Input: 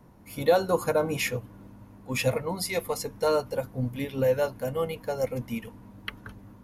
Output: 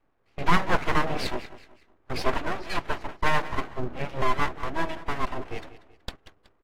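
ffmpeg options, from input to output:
-filter_complex "[0:a]agate=range=0.126:threshold=0.0126:ratio=16:detection=peak,highpass=120,equalizer=f=150:t=q:w=4:g=6,equalizer=f=230:t=q:w=4:g=-3,equalizer=f=940:t=q:w=4:g=4,equalizer=f=1400:t=q:w=4:g=5,lowpass=f=2500:w=0.5412,lowpass=f=2500:w=1.3066,asplit=2[s0][s1];[s1]aecho=0:1:187|374|561:0.168|0.0604|0.0218[s2];[s0][s2]amix=inputs=2:normalize=0,aeval=exprs='abs(val(0))':c=same,volume=1.41" -ar 44100 -c:a aac -b:a 48k

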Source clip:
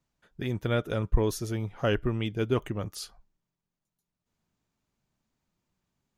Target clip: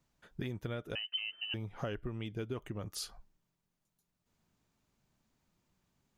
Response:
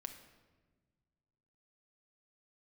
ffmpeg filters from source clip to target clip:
-filter_complex "[0:a]acompressor=threshold=0.0112:ratio=8,asettb=1/sr,asplit=3[s0][s1][s2];[s0]atrim=end=0.954[s3];[s1]atrim=start=0.95:end=1.54,asetpts=PTS-STARTPTS,afade=t=in:d=0.004:c=qsin,afade=t=out:st=0.586:d=0.004:c=qsin,lowpass=f=2600:t=q:w=0.5098,lowpass=f=2600:t=q:w=0.6013,lowpass=f=2600:t=q:w=0.9,lowpass=f=2600:t=q:w=2.563,afreqshift=-3100[s4];[s2]atrim=start=1.536[s5];[s3][s4]acrossfade=d=0.004:c1=hsin:c2=qsin[s6];[s6][s5]acrossfade=d=0.004:c1=qsin:c2=hsin,volume=1.41"

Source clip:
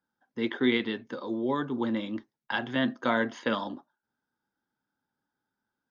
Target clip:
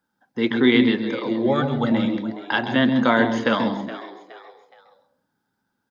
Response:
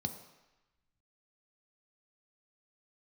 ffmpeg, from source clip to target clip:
-filter_complex "[0:a]asettb=1/sr,asplit=3[s0][s1][s2];[s0]atrim=end=1.474[s3];[s1]atrim=start=1.47:end=1.92,asetpts=PTS-STARTPTS,afade=t=in:d=0.004:c=qsin,afade=t=out:st=0.446:d=0.004:c=qsin,aecho=1:1:1.5:0.91,atrim=end_sample=19845[s4];[s2]atrim=start=1.916[s5];[s3][s4]acrossfade=d=0.004:c1=hsin:c2=qsin[s6];[s6][s5]acrossfade=d=0.004:c1=qsin:c2=hsin,asplit=4[s7][s8][s9][s10];[s8]adelay=419,afreqshift=93,volume=0.178[s11];[s9]adelay=838,afreqshift=186,volume=0.0661[s12];[s10]adelay=1257,afreqshift=279,volume=0.0243[s13];[s7][s11][s12][s13]amix=inputs=4:normalize=0,asplit=2[s14][s15];[1:a]atrim=start_sample=2205,atrim=end_sample=6615,adelay=133[s16];[s15][s16]afir=irnorm=-1:irlink=0,volume=0.316[s17];[s14][s17]amix=inputs=2:normalize=0,volume=2.51"

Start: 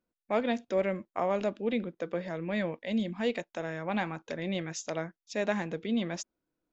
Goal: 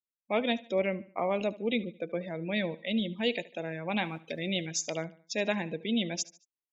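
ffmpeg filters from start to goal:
-filter_complex "[0:a]asettb=1/sr,asplit=3[s0][s1][s2];[s0]atrim=end=4.034[s3];[s1]atrim=start=4.03:end=4.66,asetpts=PTS-STARTPTS,afade=t=in:d=0.004:c=qsin,afade=t=out:st=0.626:d=0.004:c=qsin,aeval=exprs='val(0)*gte(abs(val(0)),0.00422)':c=same[s4];[s2]atrim=start=4.656[s5];[s3][s4]acrossfade=d=0.004:c1=hsin:c2=qsin[s6];[s6][s5]acrossfade=d=0.004:c1=qsin:c2=hsin,highshelf=f=2100:t=q:w=1.5:g=7,afftdn=nr=28:nf=-39,aecho=1:1:74|148|222:0.106|0.0424|0.0169"

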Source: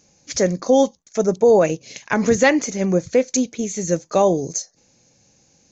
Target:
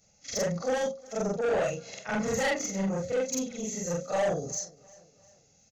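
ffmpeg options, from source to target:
-af "afftfilt=real='re':imag='-im':win_size=4096:overlap=0.75,aecho=1:1:1.5:0.64,asoftclip=type=tanh:threshold=0.112,bandreject=f=60:t=h:w=6,bandreject=f=120:t=h:w=6,bandreject=f=180:t=h:w=6,bandreject=f=240:t=h:w=6,bandreject=f=300:t=h:w=6,bandreject=f=360:t=h:w=6,bandreject=f=420:t=h:w=6,bandreject=f=480:t=h:w=6,bandreject=f=540:t=h:w=6,aecho=1:1:352|704|1056:0.0668|0.0321|0.0154,volume=0.668"

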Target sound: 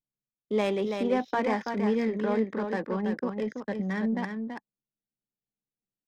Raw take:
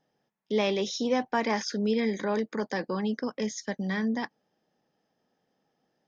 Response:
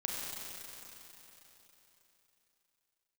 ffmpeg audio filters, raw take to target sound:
-filter_complex "[0:a]anlmdn=0.251,highshelf=f=5200:g=-9.5,acrossover=split=100[s0][s1];[s0]acrusher=bits=4:mode=log:mix=0:aa=0.000001[s2];[s2][s1]amix=inputs=2:normalize=0,adynamicsmooth=sensitivity=4:basefreq=1700,aecho=1:1:331:0.501"

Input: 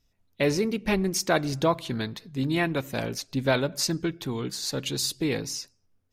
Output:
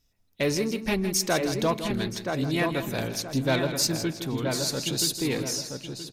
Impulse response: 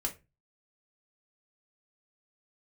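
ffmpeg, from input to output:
-filter_complex "[0:a]asplit=2[s0][s1];[s1]adelay=975,lowpass=f=1800:p=1,volume=0.562,asplit=2[s2][s3];[s3]adelay=975,lowpass=f=1800:p=1,volume=0.32,asplit=2[s4][s5];[s5]adelay=975,lowpass=f=1800:p=1,volume=0.32,asplit=2[s6][s7];[s7]adelay=975,lowpass=f=1800:p=1,volume=0.32[s8];[s2][s4][s6][s8]amix=inputs=4:normalize=0[s9];[s0][s9]amix=inputs=2:normalize=0,asoftclip=type=tanh:threshold=0.2,highshelf=f=4700:g=6.5,asplit=2[s10][s11];[s11]aecho=0:1:161|322|483:0.282|0.0676|0.0162[s12];[s10][s12]amix=inputs=2:normalize=0,volume=0.891"

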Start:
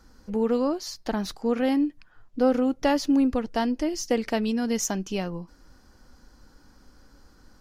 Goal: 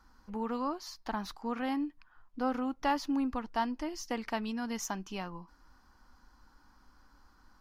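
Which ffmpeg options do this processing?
-af "equalizer=f=125:t=o:w=1:g=-7,equalizer=f=500:t=o:w=1:g=-9,equalizer=f=1000:t=o:w=1:g=10,equalizer=f=8000:t=o:w=1:g=-5,volume=0.422"

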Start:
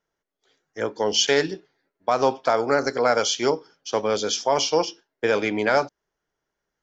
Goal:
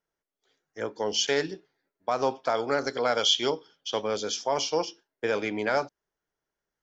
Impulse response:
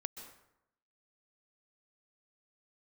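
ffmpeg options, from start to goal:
-filter_complex "[0:a]asettb=1/sr,asplit=3[s0][s1][s2];[s0]atrim=end=2.554[s3];[s1]atrim=start=2.55:end=4.03,asetpts=PTS-STARTPTS,afade=t=in:d=0.004:c=qsin,afade=t=out:st=1.476:d=0.004:c=qsin,equalizer=f=3300:t=o:w=0.38:g=13.5[s4];[s2]atrim=start=4.026[s5];[s3][s4]acrossfade=d=0.004:c1=hsin:c2=qsin[s6];[s6][s5]acrossfade=d=0.004:c1=qsin:c2=hsin,volume=0.501"

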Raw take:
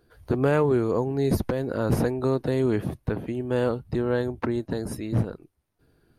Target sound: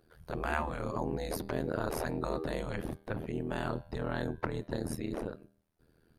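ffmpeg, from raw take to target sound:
-af "bandreject=f=198.9:t=h:w=4,bandreject=f=397.8:t=h:w=4,bandreject=f=596.7:t=h:w=4,bandreject=f=795.6:t=h:w=4,bandreject=f=994.5:t=h:w=4,bandreject=f=1193.4:t=h:w=4,bandreject=f=1392.3:t=h:w=4,bandreject=f=1591.2:t=h:w=4,bandreject=f=1790.1:t=h:w=4,bandreject=f=1989:t=h:w=4,bandreject=f=2187.9:t=h:w=4,bandreject=f=2386.8:t=h:w=4,bandreject=f=2585.7:t=h:w=4,bandreject=f=2784.6:t=h:w=4,bandreject=f=2983.5:t=h:w=4,bandreject=f=3182.4:t=h:w=4,bandreject=f=3381.3:t=h:w=4,bandreject=f=3580.2:t=h:w=4,bandreject=f=3779.1:t=h:w=4,bandreject=f=3978:t=h:w=4,bandreject=f=4176.9:t=h:w=4,bandreject=f=4375.8:t=h:w=4,bandreject=f=4574.7:t=h:w=4,bandreject=f=4773.6:t=h:w=4,tremolo=f=80:d=0.947,afftfilt=real='re*lt(hypot(re,im),0.178)':imag='im*lt(hypot(re,im),0.178)':win_size=1024:overlap=0.75"

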